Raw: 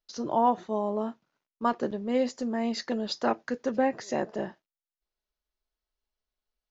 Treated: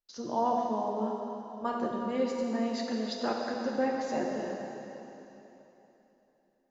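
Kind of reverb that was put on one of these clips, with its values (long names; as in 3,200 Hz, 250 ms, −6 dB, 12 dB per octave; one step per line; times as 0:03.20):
dense smooth reverb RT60 3.4 s, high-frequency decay 0.95×, pre-delay 0 ms, DRR −1 dB
level −6.5 dB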